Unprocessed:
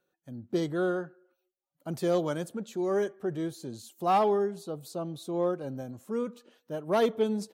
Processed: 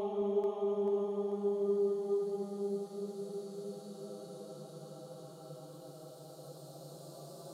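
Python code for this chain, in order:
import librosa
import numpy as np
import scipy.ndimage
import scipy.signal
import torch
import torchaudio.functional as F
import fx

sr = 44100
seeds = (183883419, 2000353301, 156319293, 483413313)

y = fx.env_flanger(x, sr, rest_ms=7.9, full_db=-26.0)
y = fx.paulstretch(y, sr, seeds[0], factor=14.0, window_s=0.5, from_s=4.35)
y = fx.echo_split(y, sr, split_hz=380.0, low_ms=217, high_ms=439, feedback_pct=52, wet_db=-5.0)
y = y * librosa.db_to_amplitude(-7.5)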